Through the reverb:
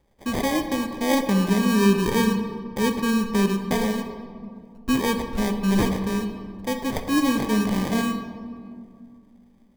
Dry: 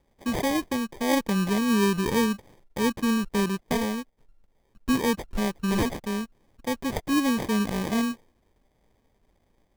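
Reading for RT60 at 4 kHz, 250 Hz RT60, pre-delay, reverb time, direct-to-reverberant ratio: 1.2 s, 2.9 s, 10 ms, 2.3 s, 6.0 dB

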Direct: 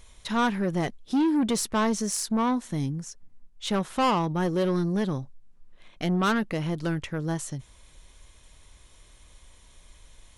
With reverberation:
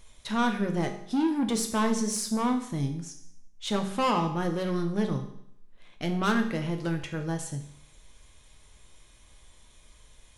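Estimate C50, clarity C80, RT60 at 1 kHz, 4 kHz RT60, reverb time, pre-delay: 9.0 dB, 12.0 dB, 0.70 s, 0.70 s, 0.70 s, 5 ms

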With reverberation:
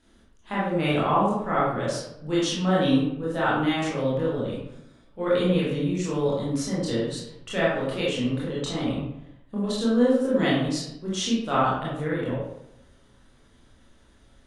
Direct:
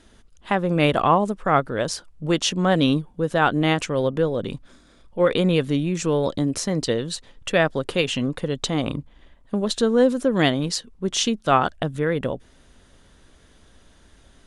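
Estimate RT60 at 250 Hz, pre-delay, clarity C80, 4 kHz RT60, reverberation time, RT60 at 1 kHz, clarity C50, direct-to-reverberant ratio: 0.90 s, 20 ms, 3.5 dB, 0.50 s, 0.85 s, 0.80 s, 0.0 dB, -7.5 dB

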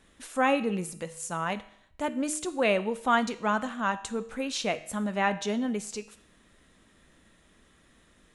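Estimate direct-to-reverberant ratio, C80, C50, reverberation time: 11.5 dB, 18.5 dB, 15.5 dB, 0.70 s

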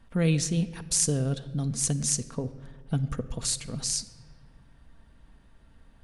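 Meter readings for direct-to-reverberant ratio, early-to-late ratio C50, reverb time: 8.5 dB, 15.0 dB, 1.7 s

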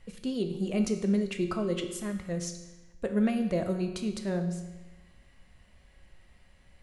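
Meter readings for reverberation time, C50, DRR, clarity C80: 1.1 s, 8.5 dB, 5.5 dB, 10.5 dB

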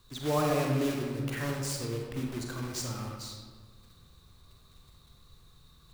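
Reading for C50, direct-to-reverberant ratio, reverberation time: 1.0 dB, 0.0 dB, 1.6 s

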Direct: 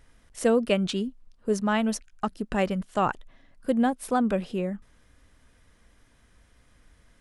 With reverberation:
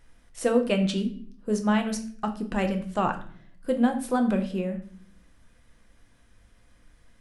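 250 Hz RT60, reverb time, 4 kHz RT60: 0.85 s, 0.55 s, 0.40 s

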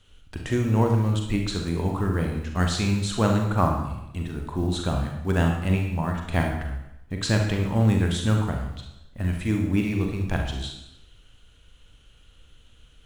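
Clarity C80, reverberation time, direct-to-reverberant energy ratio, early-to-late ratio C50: 7.0 dB, 0.85 s, 1.5 dB, 3.5 dB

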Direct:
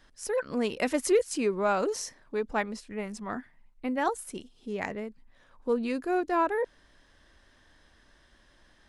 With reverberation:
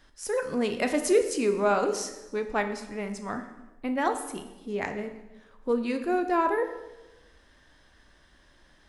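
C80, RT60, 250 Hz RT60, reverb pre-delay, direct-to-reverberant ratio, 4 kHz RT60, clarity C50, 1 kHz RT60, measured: 12.0 dB, 1.1 s, 1.1 s, 8 ms, 6.5 dB, 0.90 s, 10.0 dB, 1.0 s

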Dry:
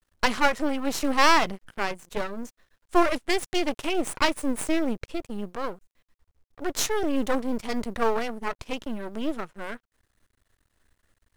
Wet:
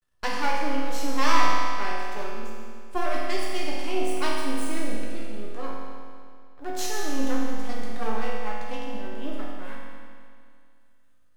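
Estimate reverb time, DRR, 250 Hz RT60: 2.2 s, -6.0 dB, 2.2 s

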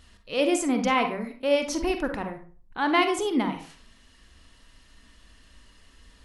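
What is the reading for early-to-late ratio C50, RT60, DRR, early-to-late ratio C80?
7.5 dB, 0.40 s, 5.5 dB, 13.0 dB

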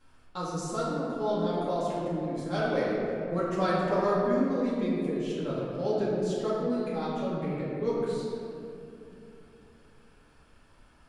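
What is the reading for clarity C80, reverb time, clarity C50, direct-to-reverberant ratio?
0.0 dB, 2.8 s, -2.0 dB, -9.0 dB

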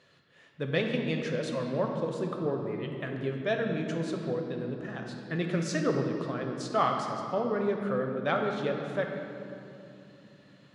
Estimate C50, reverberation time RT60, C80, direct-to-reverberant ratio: 3.5 dB, 2.9 s, 4.5 dB, 2.0 dB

